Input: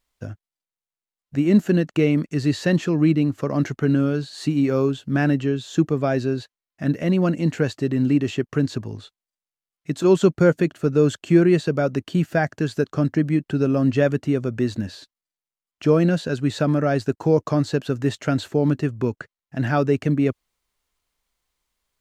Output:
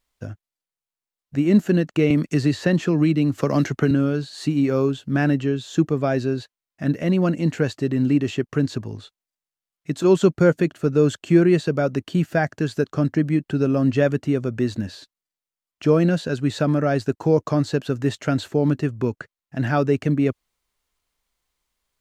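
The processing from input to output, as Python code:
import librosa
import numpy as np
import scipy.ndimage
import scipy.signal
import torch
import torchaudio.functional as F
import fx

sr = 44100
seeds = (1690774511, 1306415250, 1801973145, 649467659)

y = fx.band_squash(x, sr, depth_pct=100, at=(2.1, 3.91))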